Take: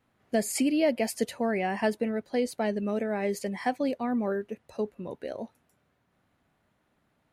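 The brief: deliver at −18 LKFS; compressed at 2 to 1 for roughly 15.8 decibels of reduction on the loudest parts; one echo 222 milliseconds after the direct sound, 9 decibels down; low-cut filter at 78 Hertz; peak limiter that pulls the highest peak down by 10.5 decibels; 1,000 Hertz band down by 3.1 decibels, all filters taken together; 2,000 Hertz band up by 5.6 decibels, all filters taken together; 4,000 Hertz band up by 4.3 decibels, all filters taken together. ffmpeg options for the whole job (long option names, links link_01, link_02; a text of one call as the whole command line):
ffmpeg -i in.wav -af "highpass=78,equalizer=frequency=1000:width_type=o:gain=-6.5,equalizer=frequency=2000:width_type=o:gain=7.5,equalizer=frequency=4000:width_type=o:gain=3.5,acompressor=threshold=-52dB:ratio=2,alimiter=level_in=15dB:limit=-24dB:level=0:latency=1,volume=-15dB,aecho=1:1:222:0.355,volume=29.5dB" out.wav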